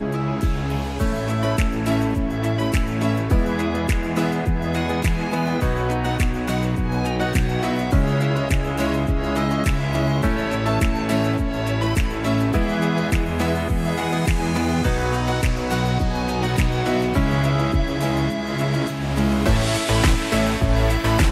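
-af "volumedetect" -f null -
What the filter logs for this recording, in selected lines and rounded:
mean_volume: -20.1 dB
max_volume: -6.9 dB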